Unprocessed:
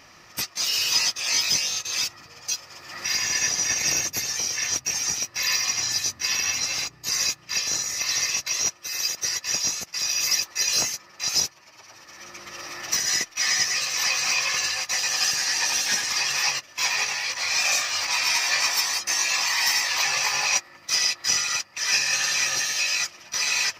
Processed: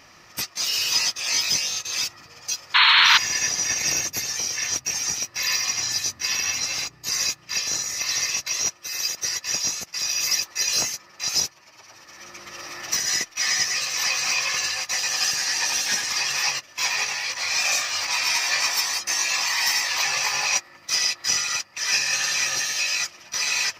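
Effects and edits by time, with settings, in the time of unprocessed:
2.74–3.18 s: painted sound noise 880–4400 Hz -15 dBFS

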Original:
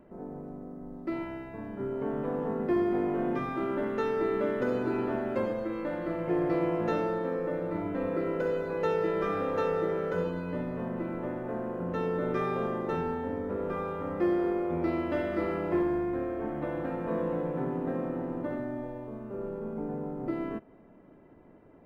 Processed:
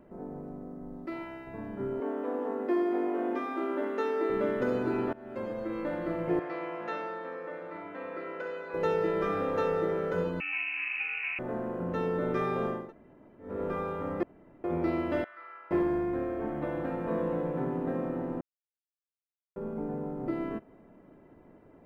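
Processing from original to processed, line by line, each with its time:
1.06–1.47 s: bass shelf 420 Hz -8.5 dB
2.00–4.30 s: Chebyshev high-pass 260 Hz, order 4
5.13–5.78 s: fade in, from -23.5 dB
6.39–8.74 s: band-pass filter 1.9 kHz, Q 0.65
10.40–11.39 s: frequency inversion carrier 2.8 kHz
12.81–13.50 s: room tone, crossfade 0.24 s
14.23–14.64 s: room tone
15.24–15.71 s: ladder band-pass 1.6 kHz, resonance 45%
18.41–19.56 s: mute

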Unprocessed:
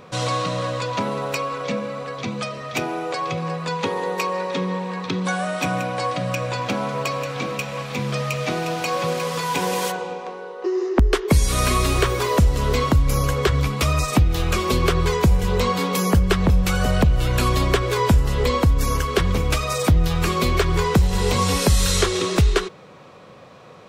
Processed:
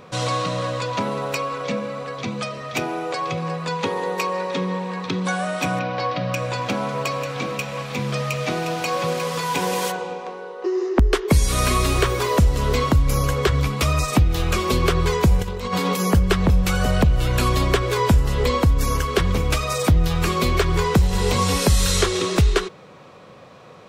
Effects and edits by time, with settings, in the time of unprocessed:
5.79–6.34 s: steep low-pass 5.4 kHz
15.41–16.00 s: compressor with a negative ratio -23 dBFS, ratio -0.5

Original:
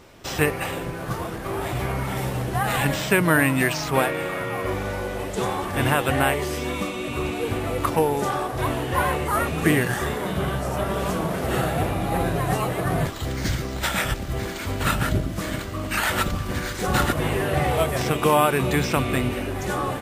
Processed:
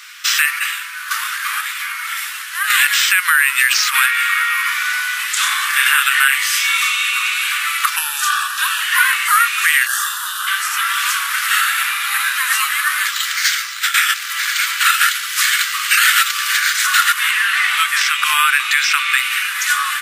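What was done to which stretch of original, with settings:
0.59–1.11 s: gain -5.5 dB
1.61–2.70 s: gain -6.5 dB
5.25–7.11 s: doubling 30 ms -4.5 dB
7.96–8.81 s: Butterworth band-stop 2.1 kHz, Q 4.3
9.86–10.47 s: static phaser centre 900 Hz, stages 4
11.63–12.45 s: brick-wall FIR high-pass 700 Hz
13.47–13.94 s: fade out, to -12 dB
14.94–16.57 s: tilt shelf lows -4.5 dB, about 860 Hz
17.31–19.18 s: treble shelf 9.3 kHz -11 dB
whole clip: steep high-pass 1.3 kHz 48 dB/octave; compression 1.5:1, threshold -33 dBFS; loudness maximiser +19.5 dB; trim -1 dB

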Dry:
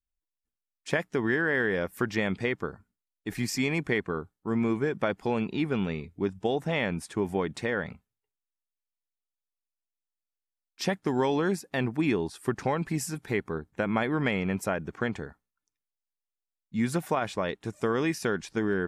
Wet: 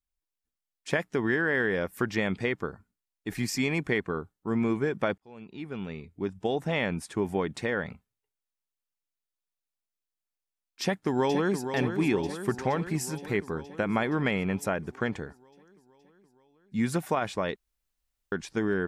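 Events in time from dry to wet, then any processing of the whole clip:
5.18–6.65 s: fade in
10.82–11.68 s: echo throw 470 ms, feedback 70%, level -8 dB
17.56–18.32 s: room tone

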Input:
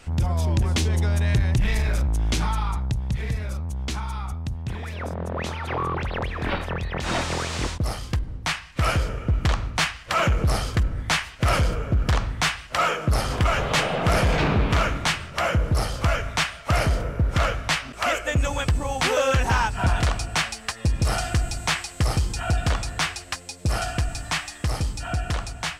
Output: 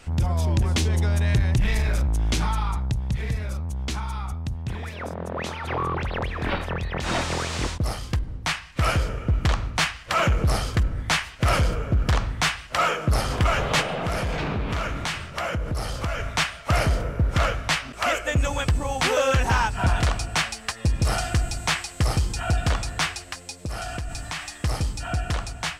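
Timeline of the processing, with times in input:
4.89–5.65 s: bass shelf 83 Hz -10.5 dB
13.81–16.20 s: compression 4:1, threshold -24 dBFS
23.23–24.55 s: compression, threshold -27 dBFS

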